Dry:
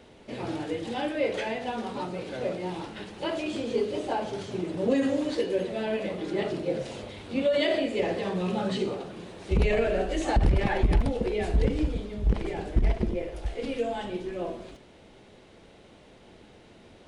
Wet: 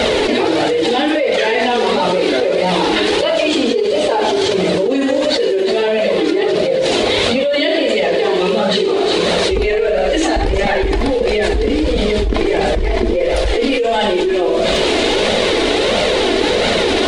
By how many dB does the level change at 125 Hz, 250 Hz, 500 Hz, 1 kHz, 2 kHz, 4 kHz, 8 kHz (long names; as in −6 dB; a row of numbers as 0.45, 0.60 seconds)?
+5.5, +13.0, +16.0, +16.0, +17.5, +22.0, +20.5 decibels